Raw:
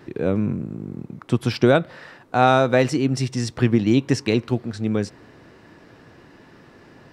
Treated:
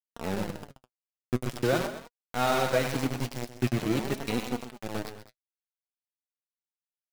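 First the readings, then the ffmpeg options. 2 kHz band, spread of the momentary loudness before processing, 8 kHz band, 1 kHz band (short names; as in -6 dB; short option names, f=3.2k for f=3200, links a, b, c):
-7.5 dB, 15 LU, -4.0 dB, -9.5 dB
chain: -filter_complex "[0:a]asplit=2[a][b];[b]aecho=0:1:97|194|291|388:0.473|0.161|0.0547|0.0186[c];[a][c]amix=inputs=2:normalize=0,aeval=exprs='val(0)*gte(abs(val(0)),0.141)':c=same,asplit=2[d][e];[e]aecho=0:1:129|206:0.224|0.168[f];[d][f]amix=inputs=2:normalize=0,flanger=delay=4:depth=4.5:regen=46:speed=0.45:shape=sinusoidal,volume=-6dB"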